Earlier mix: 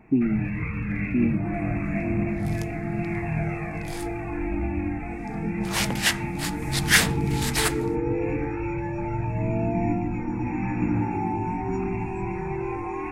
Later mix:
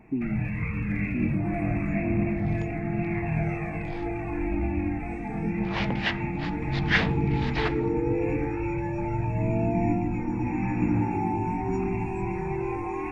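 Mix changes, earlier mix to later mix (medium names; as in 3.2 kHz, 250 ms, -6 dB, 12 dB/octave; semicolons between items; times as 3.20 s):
speech -7.5 dB; second sound: add Gaussian low-pass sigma 2.7 samples; master: add peaking EQ 1.4 kHz -4 dB 0.62 oct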